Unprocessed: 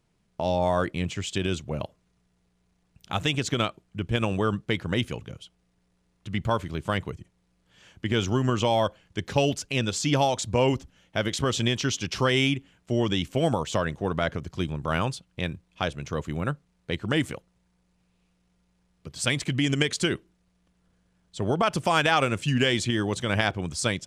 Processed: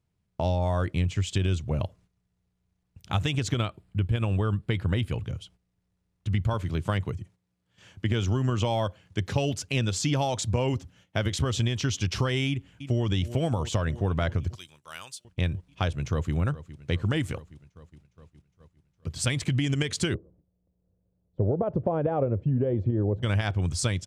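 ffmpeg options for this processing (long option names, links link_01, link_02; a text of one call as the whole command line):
ffmpeg -i in.wav -filter_complex "[0:a]asettb=1/sr,asplit=3[link_01][link_02][link_03];[link_01]atrim=end=3.574[link_04];[link_02]atrim=start=3.57:end=5.24,asetpts=PTS-STARTPTS,afade=type=in:duration=0.004:curve=qsin,afade=type=out:start_time=1.666:duration=0.004:curve=qsin,equalizer=frequency=6100:width_type=o:width=0.32:gain=-11[link_05];[link_03]atrim=start=5.236[link_06];[link_04][link_05]acrossfade=duration=0.004:curve1=hsin:curve2=qsin[link_07];[link_07][link_06]acrossfade=duration=0.004:curve1=qsin:curve2=hsin,asettb=1/sr,asplit=3[link_08][link_09][link_10];[link_08]atrim=end=6.534[link_11];[link_09]atrim=start=6.53:end=11.26,asetpts=PTS-STARTPTS,afade=type=in:duration=0.004:curve=qsin,afade=type=out:start_time=4.726:duration=0.004:curve=qsin,highpass=100[link_12];[link_10]atrim=start=11.256[link_13];[link_11][link_12]acrossfade=duration=0.004:curve1=hsin:curve2=qsin[link_14];[link_14][link_13]acrossfade=duration=0.004:curve1=qsin:curve2=hsin,asplit=2[link_15][link_16];[link_16]afade=type=in:start_time=12.48:duration=0.01,afade=type=out:start_time=13.04:duration=0.01,aecho=0:1:320|640|960|1280|1600|1920|2240|2560|2880|3200:0.149624|0.112218|0.0841633|0.0631224|0.0473418|0.0355064|0.0266298|0.0199723|0.0149793|0.0112344[link_17];[link_15][link_17]amix=inputs=2:normalize=0,asettb=1/sr,asplit=3[link_18][link_19][link_20];[link_18]atrim=end=14.554[link_21];[link_19]atrim=start=14.55:end=15.25,asetpts=PTS-STARTPTS,afade=type=in:duration=0.004:curve=qsin,afade=type=out:start_time=0.696:duration=0.004:curve=qsin,aderivative[link_22];[link_20]atrim=start=15.246[link_23];[link_21][link_22]acrossfade=duration=0.004:curve1=hsin:curve2=qsin[link_24];[link_24][link_23]acrossfade=duration=0.004:curve1=qsin:curve2=hsin,asplit=2[link_25][link_26];[link_26]afade=type=in:start_time=15.91:duration=0.01,afade=type=out:start_time=16.34:duration=0.01,aecho=0:1:410|820|1230|1640|2050|2460|2870|3280|3690|4100:0.149624|0.112218|0.0841633|0.0631224|0.0473418|0.0355064|0.0266298|0.0199723|0.0149793|0.0112344[link_27];[link_25][link_27]amix=inputs=2:normalize=0,asettb=1/sr,asplit=3[link_28][link_29][link_30];[link_28]atrim=end=20.144[link_31];[link_29]atrim=start=20.14:end=23.23,asetpts=PTS-STARTPTS,afade=type=in:duration=0.004:curve=qsin,afade=type=out:start_time=3.086:duration=0.004:curve=qsin,lowpass=frequency=530:width_type=q:width=2.4[link_32];[link_30]atrim=start=23.226[link_33];[link_31][link_32]acrossfade=duration=0.004:curve1=hsin:curve2=qsin[link_34];[link_34][link_33]acrossfade=duration=0.004:curve1=qsin:curve2=hsin,agate=range=-11dB:threshold=-57dB:ratio=16:detection=peak,equalizer=frequency=90:width=1.3:gain=13.5,acompressor=threshold=-22dB:ratio=6" out.wav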